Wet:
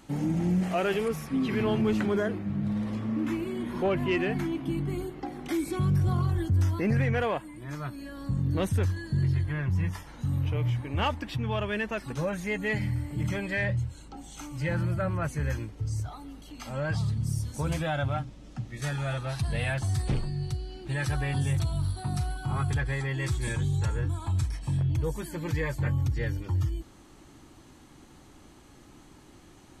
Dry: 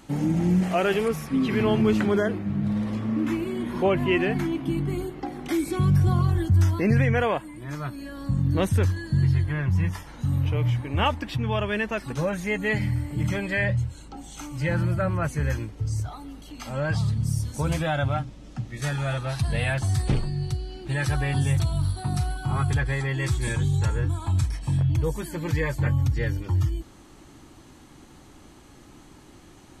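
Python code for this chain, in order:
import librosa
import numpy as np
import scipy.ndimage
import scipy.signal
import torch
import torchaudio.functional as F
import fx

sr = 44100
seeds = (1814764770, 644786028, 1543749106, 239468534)

y = 10.0 ** (-13.5 / 20.0) * np.tanh(x / 10.0 ** (-13.5 / 20.0))
y = y * 10.0 ** (-3.5 / 20.0)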